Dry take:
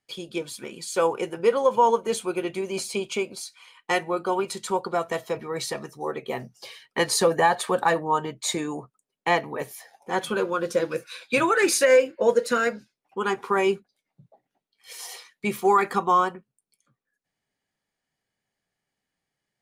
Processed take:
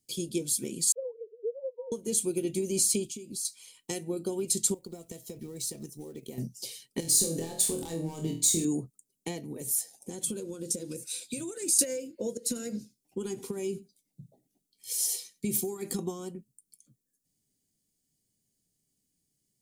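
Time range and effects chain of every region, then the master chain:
0.92–1.92 sine-wave speech + Butterworth band-pass 560 Hz, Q 2.8
3.05–3.45 band shelf 1000 Hz -9.5 dB 2.5 oct + compressor 12:1, threshold -40 dBFS
4.74–6.38 G.711 law mismatch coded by A + compressor 5:1, threshold -38 dBFS
7–8.65 compressor 10:1, threshold -27 dBFS + hard clip -26.5 dBFS + flutter echo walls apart 4.2 m, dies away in 0.37 s
9.45–11.79 bell 8300 Hz +7.5 dB 0.56 oct + compressor, threshold -34 dBFS
12.37–15.99 compressor 10:1, threshold -28 dBFS + echo 94 ms -22.5 dB
whole clip: notch 1700 Hz, Q 24; compressor 10:1, threshold -27 dBFS; EQ curve 300 Hz 0 dB, 1200 Hz -28 dB, 7700 Hz +7 dB; gain +5.5 dB

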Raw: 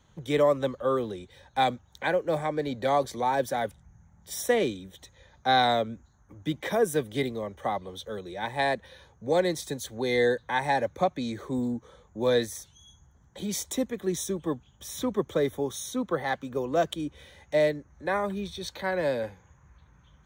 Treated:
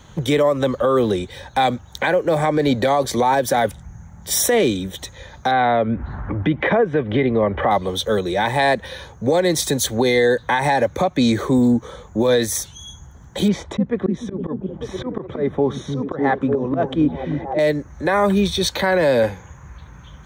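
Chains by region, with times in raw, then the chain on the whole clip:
5.51–7.71 LPF 2600 Hz 24 dB/oct + upward compressor, threshold -30 dBFS
13.48–17.59 LPF 1700 Hz + auto swell 0.288 s + delay with a stepping band-pass 0.3 s, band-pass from 160 Hz, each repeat 0.7 oct, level -1 dB
whole clip: compressor, threshold -27 dBFS; maximiser +24.5 dB; gain -7.5 dB

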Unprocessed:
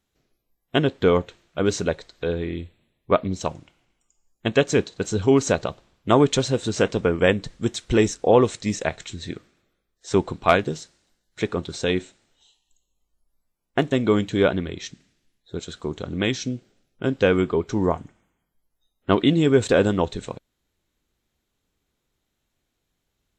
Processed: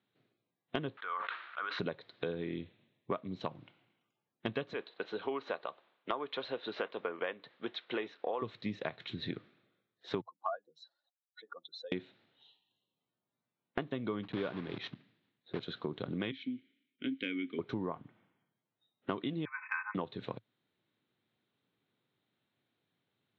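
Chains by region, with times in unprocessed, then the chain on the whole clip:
0.97–1.79 G.711 law mismatch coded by A + ladder band-pass 1500 Hz, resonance 55% + fast leveller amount 100%
4.73–8.42 HPF 560 Hz + air absorption 170 m
10.21–11.92 spectral contrast raised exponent 2.7 + HPF 600 Hz 24 dB/oct + fixed phaser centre 970 Hz, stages 4
14.23–15.63 block floating point 3-bit + high shelf 4800 Hz -7 dB
16.31–17.59 vowel filter i + bell 2300 Hz +11.5 dB 3 oct
19.45–19.95 brick-wall FIR band-pass 830–2600 Hz + comb 3.9 ms, depth 76%
whole clip: Chebyshev band-pass 110–3900 Hz, order 4; dynamic EQ 1100 Hz, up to +6 dB, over -42 dBFS, Q 4.3; compressor 10:1, threshold -30 dBFS; gain -3 dB

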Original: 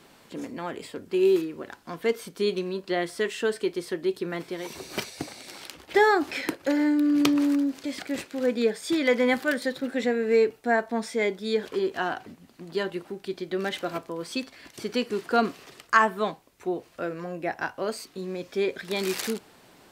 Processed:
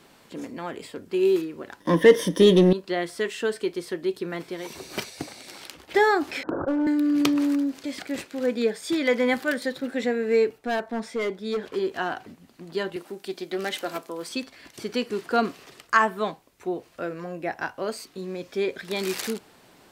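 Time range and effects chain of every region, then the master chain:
1.8–2.73 ripple EQ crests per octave 1.2, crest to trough 14 dB + sample leveller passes 2 + small resonant body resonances 260/430/1900/3600 Hz, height 11 dB, ringing for 20 ms
6.43–6.87 steep low-pass 1500 Hz 96 dB/oct + hard clip -20 dBFS + sustainer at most 22 dB/s
10.58–11.73 high shelf 4000 Hz -7.5 dB + overloaded stage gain 22.5 dB
12.96–14.29 HPF 200 Hz + high shelf 5600 Hz +9.5 dB + Doppler distortion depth 0.11 ms
whole clip: dry

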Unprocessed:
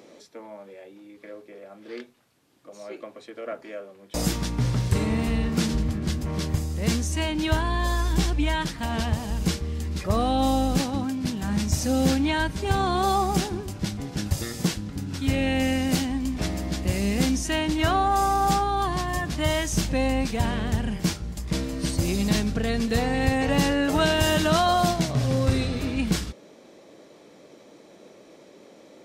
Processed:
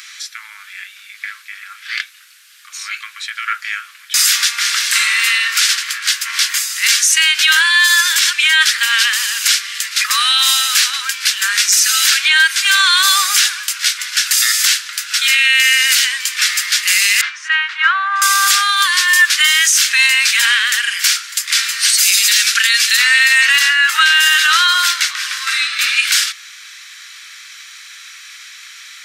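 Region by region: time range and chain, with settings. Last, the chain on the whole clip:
17.21–18.22 LPF 1300 Hz + upward compressor, threshold -27 dBFS
21.94–22.97 high shelf 2400 Hz +7 dB + notch 980 Hz, Q 7.7
23.59–25.79 steep high-pass 280 Hz 96 dB/oct + high shelf 2100 Hz -9.5 dB
whole clip: steep high-pass 1400 Hz 48 dB/oct; maximiser +26 dB; gain -1 dB

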